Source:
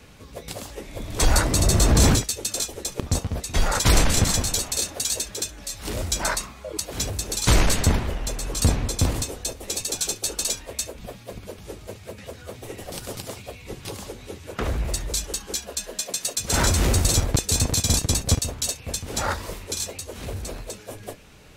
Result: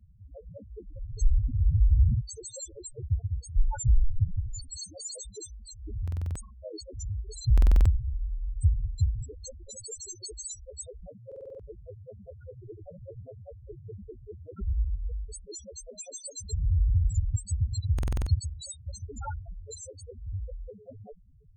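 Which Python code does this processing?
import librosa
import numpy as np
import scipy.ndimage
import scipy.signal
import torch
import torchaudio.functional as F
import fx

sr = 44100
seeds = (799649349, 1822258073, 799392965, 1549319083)

y = fx.spec_topn(x, sr, count=2)
y = fx.buffer_glitch(y, sr, at_s=(6.03, 7.53, 11.27, 17.94), block=2048, repeats=6)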